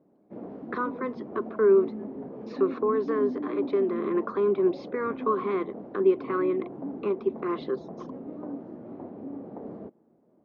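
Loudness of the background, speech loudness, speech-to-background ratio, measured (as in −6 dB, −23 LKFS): −38.0 LKFS, −27.5 LKFS, 10.5 dB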